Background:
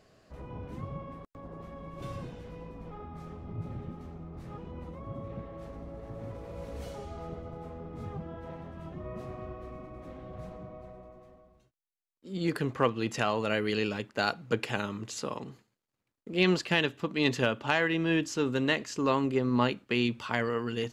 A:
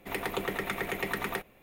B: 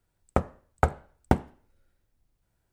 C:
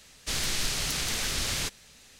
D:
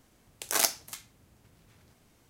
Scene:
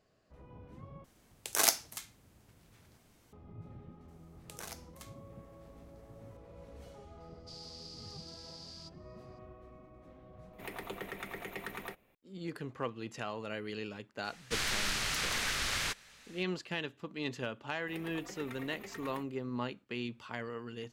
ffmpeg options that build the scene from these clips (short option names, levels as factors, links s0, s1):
-filter_complex "[4:a]asplit=2[s0][s1];[3:a]asplit=2[s2][s3];[1:a]asplit=2[s4][s5];[0:a]volume=0.282[s6];[s1]acrossover=split=1600|5100[s7][s8][s9];[s7]acompressor=threshold=0.00708:ratio=4[s10];[s8]acompressor=threshold=0.00501:ratio=4[s11];[s9]acompressor=threshold=0.00708:ratio=4[s12];[s10][s11][s12]amix=inputs=3:normalize=0[s13];[s2]bandpass=f=4800:t=q:w=11:csg=0[s14];[s3]equalizer=f=1500:t=o:w=2.2:g=10[s15];[s5]asplit=2[s16][s17];[s17]adelay=3.7,afreqshift=2.3[s18];[s16][s18]amix=inputs=2:normalize=1[s19];[s6]asplit=2[s20][s21];[s20]atrim=end=1.044[s22];[s0]atrim=end=2.29,asetpts=PTS-STARTPTS,volume=0.841[s23];[s21]atrim=start=3.326[s24];[s13]atrim=end=2.29,asetpts=PTS-STARTPTS,volume=0.422,afade=t=in:d=0.004:c=hsin,afade=t=out:st=2.286:d=0.004:c=hsin,adelay=4080[s25];[s14]atrim=end=2.19,asetpts=PTS-STARTPTS,volume=0.335,afade=t=in:d=0.004:c=hsin,afade=t=out:st=2.186:d=0.004:c=hsin,adelay=7200[s26];[s4]atrim=end=1.62,asetpts=PTS-STARTPTS,volume=0.316,afade=t=in:d=0.004:c=hsin,afade=t=out:st=1.616:d=0.004:c=hsin,adelay=10530[s27];[s15]atrim=end=2.19,asetpts=PTS-STARTPTS,volume=0.398,afade=t=in:d=0.004:c=hsin,afade=t=out:st=2.186:d=0.004:c=hsin,adelay=14240[s28];[s19]atrim=end=1.62,asetpts=PTS-STARTPTS,volume=0.237,afade=t=in:d=0.004:c=hsin,afade=t=out:st=1.616:d=0.004:c=hsin,adelay=17810[s29];[s22][s23]acrossfade=d=0.004:c1=hsin:c2=hsin[s30];[s30][s24]acrossfade=d=0.004:c1=hsin:c2=hsin[s31];[s31][s25][s26][s27][s28][s29]amix=inputs=6:normalize=0"